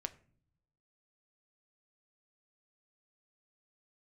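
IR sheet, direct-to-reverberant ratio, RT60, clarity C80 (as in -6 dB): 9.0 dB, not exponential, 22.0 dB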